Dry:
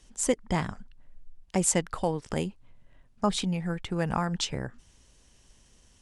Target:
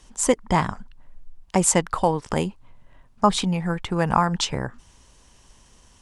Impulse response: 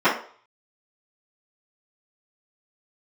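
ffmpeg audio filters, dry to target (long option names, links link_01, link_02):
-af "equalizer=frequency=1000:width_type=o:width=0.78:gain=7.5,volume=5.5dB"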